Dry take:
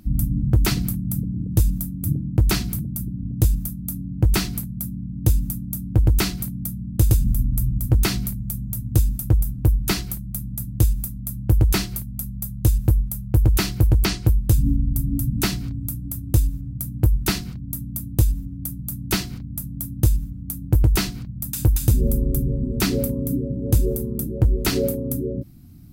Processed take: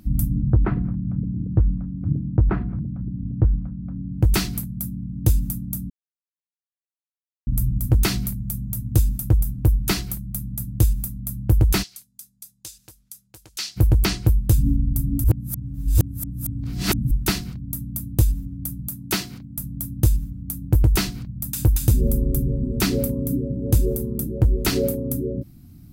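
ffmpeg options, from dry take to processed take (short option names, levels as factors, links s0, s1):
-filter_complex "[0:a]asettb=1/sr,asplit=3[s0][s1][s2];[s0]atrim=end=0.364[s3];[s1]atrim=start=0.36:end=4.15,asetpts=PTS-STARTPTS,afade=t=in:d=0.004:c=qsin,afade=t=out:st=3.786:d=0.004:c=qsin,lowpass=f=1500:w=0.5412,lowpass=f=1500:w=1.3066[s4];[s2]atrim=start=4.146[s5];[s3][s4]acrossfade=d=0.004:c1=hsin:c2=qsin[s6];[s6][s5]acrossfade=d=0.004:c1=qsin:c2=hsin,asplit=3[s7][s8][s9];[s7]afade=t=out:st=11.82:d=0.02[s10];[s8]bandpass=f=5200:t=q:w=1.2,afade=t=in:st=11.82:d=0.02,afade=t=out:st=13.76:d=0.02[s11];[s9]afade=t=in:st=13.76:d=0.02[s12];[s10][s11][s12]amix=inputs=3:normalize=0,asettb=1/sr,asplit=3[s13][s14][s15];[s13]atrim=end=18.884[s16];[s14]atrim=start=18.88:end=19.58,asetpts=PTS-STARTPTS,afade=t=in:d=0.004:c=qsin,afade=t=out:st=0.696:d=0.004:c=qsin,highpass=f=200:p=1[s17];[s15]atrim=start=19.576[s18];[s16][s17]acrossfade=d=0.004:c1=hsin:c2=qsin[s19];[s19][s18]acrossfade=d=0.004:c1=qsin:c2=hsin,asplit=5[s20][s21][s22][s23][s24];[s20]atrim=end=5.9,asetpts=PTS-STARTPTS,afade=t=out:st=5.896:d=0.004:c=hsin[s25];[s21]atrim=start=5.9:end=7.47,asetpts=PTS-STARTPTS,volume=0[s26];[s22]atrim=start=7.47:end=15.242,asetpts=PTS-STARTPTS,afade=t=in:d=0.004:c=hsin[s27];[s23]atrim=start=15.238:end=17.112,asetpts=PTS-STARTPTS,areverse[s28];[s24]atrim=start=17.108[s29];[s25][s26][s27]concat=n=3:v=0:a=1[s30];[s30][s28]acrossfade=d=0.004:c1=hsin:c2=hsin[s31];[s31][s29]acrossfade=d=0.004:c1=hsin:c2=hsin"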